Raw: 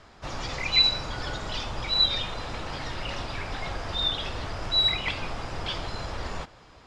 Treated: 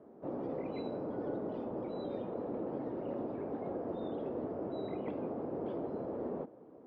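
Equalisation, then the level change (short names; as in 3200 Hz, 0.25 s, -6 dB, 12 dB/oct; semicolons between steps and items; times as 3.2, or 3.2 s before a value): Butterworth band-pass 340 Hz, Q 1.1; +5.0 dB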